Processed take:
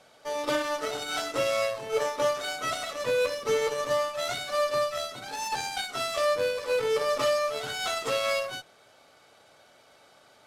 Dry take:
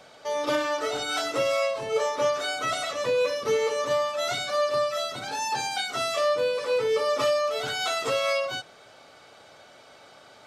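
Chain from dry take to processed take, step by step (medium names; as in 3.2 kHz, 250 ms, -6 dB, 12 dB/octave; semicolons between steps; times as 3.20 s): CVSD coder 64 kbps; Chebyshev shaper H 6 -30 dB, 7 -24 dB, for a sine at -14 dBFS; trim -1.5 dB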